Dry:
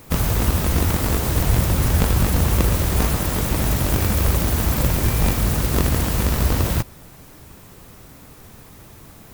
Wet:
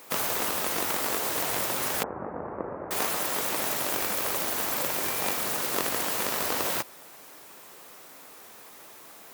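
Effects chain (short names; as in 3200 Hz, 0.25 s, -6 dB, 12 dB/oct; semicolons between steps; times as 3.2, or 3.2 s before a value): HPF 490 Hz 12 dB/oct; vocal rider; 2.03–2.91 Gaussian blur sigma 7.4 samples; gain -2.5 dB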